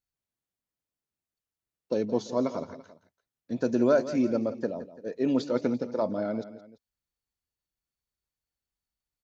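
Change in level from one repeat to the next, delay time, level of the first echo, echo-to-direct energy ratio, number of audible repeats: -6.5 dB, 0.17 s, -14.0 dB, -13.0 dB, 2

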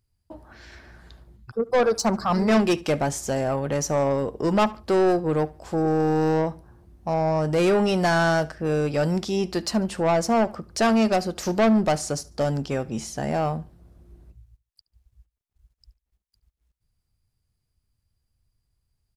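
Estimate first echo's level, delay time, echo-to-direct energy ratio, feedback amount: -22.0 dB, 72 ms, -21.5 dB, 29%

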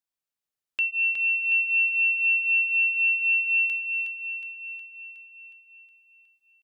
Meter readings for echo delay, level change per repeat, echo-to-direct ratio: 0.365 s, -4.5 dB, -4.5 dB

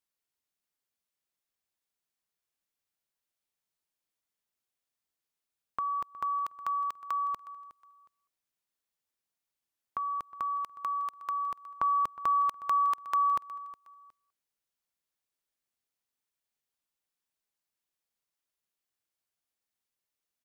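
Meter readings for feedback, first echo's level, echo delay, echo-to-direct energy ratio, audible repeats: 28%, -18.0 dB, 0.364 s, -17.5 dB, 2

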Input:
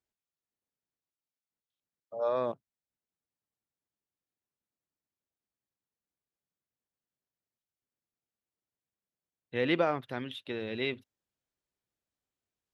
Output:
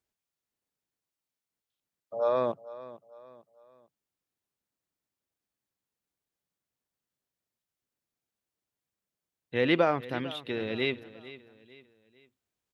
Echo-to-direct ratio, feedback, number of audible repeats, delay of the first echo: -16.5 dB, 40%, 3, 0.449 s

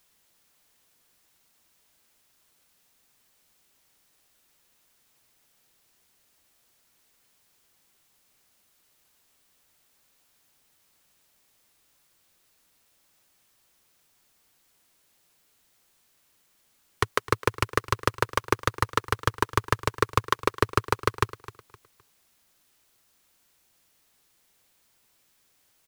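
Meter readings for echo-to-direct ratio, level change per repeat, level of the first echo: -17.0 dB, -10.5 dB, -17.5 dB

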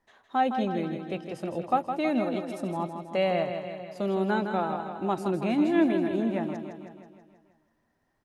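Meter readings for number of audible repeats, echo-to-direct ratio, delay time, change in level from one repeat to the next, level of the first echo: 6, -5.5 dB, 0.161 s, -4.5 dB, -7.5 dB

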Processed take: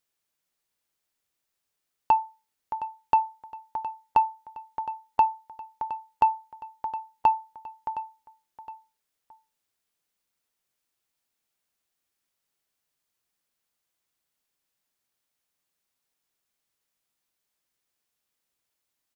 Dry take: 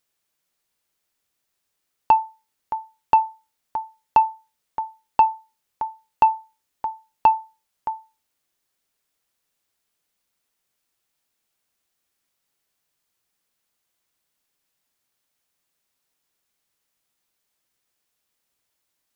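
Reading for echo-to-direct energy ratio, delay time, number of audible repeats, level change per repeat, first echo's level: -14.0 dB, 0.715 s, 2, -7.5 dB, -14.5 dB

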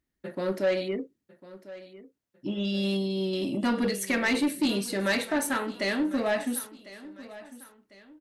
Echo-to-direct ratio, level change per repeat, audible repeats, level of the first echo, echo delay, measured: -17.0 dB, -8.0 dB, 2, -17.5 dB, 1.05 s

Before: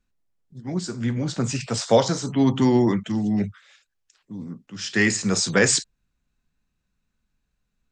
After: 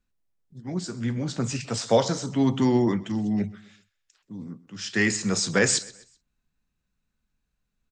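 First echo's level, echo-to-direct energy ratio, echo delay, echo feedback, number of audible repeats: -20.5 dB, -20.0 dB, 0.128 s, 38%, 2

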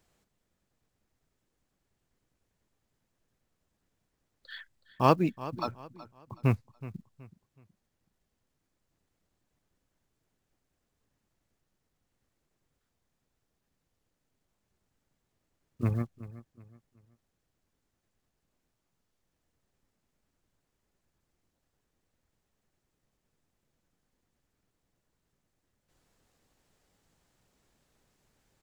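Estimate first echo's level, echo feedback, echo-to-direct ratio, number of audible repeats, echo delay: -16.5 dB, 33%, -16.0 dB, 2, 0.373 s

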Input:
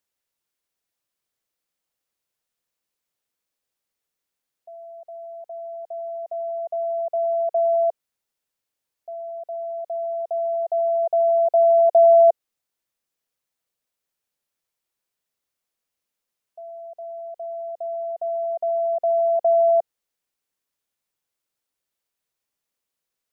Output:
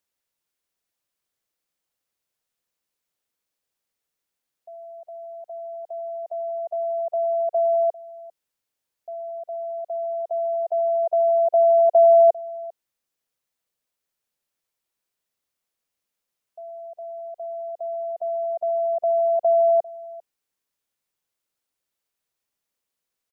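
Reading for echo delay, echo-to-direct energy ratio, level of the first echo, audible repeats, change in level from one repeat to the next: 0.398 s, -21.0 dB, -21.0 dB, 1, no steady repeat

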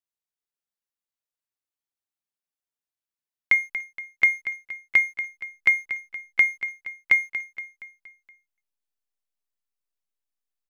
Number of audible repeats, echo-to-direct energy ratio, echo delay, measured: 4, -10.5 dB, 0.235 s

